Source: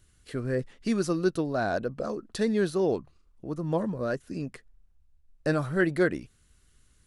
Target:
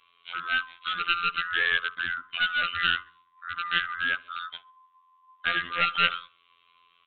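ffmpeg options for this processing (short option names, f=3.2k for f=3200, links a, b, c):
-filter_complex "[0:a]afftfilt=real='real(if(lt(b,960),b+48*(1-2*mod(floor(b/48),2)),b),0)':imag='imag(if(lt(b,960),b+48*(1-2*mod(floor(b/48),2)),b),0)':win_size=2048:overlap=0.75,afftfilt=real='hypot(re,im)*cos(PI*b)':imag='0':win_size=2048:overlap=0.75,aresample=8000,aeval=exprs='clip(val(0),-1,0.0398)':c=same,aresample=44100,highshelf=f=1.6k:t=q:w=1.5:g=13.5,asplit=2[a][b];[b]adelay=67,lowpass=f=2.1k:p=1,volume=-20.5dB,asplit=2[c][d];[d]adelay=67,lowpass=f=2.1k:p=1,volume=0.44,asplit=2[e][f];[f]adelay=67,lowpass=f=2.1k:p=1,volume=0.44[g];[a][c][e][g]amix=inputs=4:normalize=0"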